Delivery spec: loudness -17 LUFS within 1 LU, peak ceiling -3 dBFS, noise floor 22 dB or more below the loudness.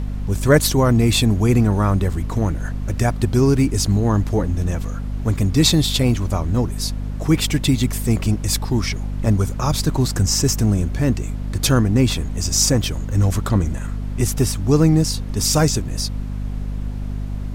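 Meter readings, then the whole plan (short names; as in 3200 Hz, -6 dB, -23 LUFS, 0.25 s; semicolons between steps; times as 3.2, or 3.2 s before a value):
hum 50 Hz; harmonics up to 250 Hz; hum level -23 dBFS; noise floor -27 dBFS; noise floor target -42 dBFS; loudness -19.5 LUFS; peak -2.5 dBFS; loudness target -17.0 LUFS
-> notches 50/100/150/200/250 Hz; noise print and reduce 15 dB; gain +2.5 dB; limiter -3 dBFS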